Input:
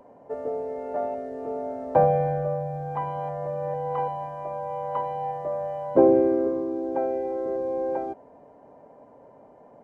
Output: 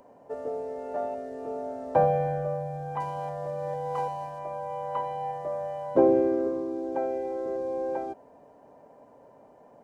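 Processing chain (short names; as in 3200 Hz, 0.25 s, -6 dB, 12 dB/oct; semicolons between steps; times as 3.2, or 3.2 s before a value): 3–4.39 median filter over 9 samples; high shelf 2500 Hz +10 dB; notch 2100 Hz, Q 30; gain -3.5 dB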